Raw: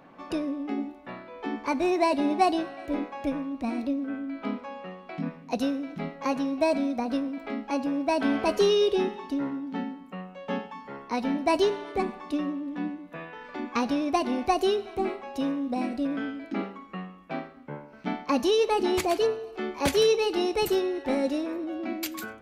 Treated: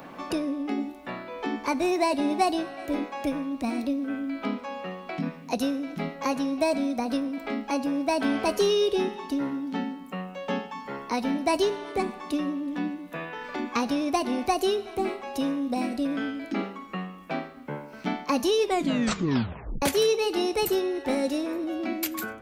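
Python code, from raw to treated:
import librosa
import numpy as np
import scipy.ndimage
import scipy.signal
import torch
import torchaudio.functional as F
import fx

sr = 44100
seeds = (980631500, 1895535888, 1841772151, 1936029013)

y = fx.edit(x, sr, fx.tape_stop(start_s=18.58, length_s=1.24), tone=tone)
y = fx.high_shelf(y, sr, hz=7000.0, db=11.5)
y = fx.band_squash(y, sr, depth_pct=40)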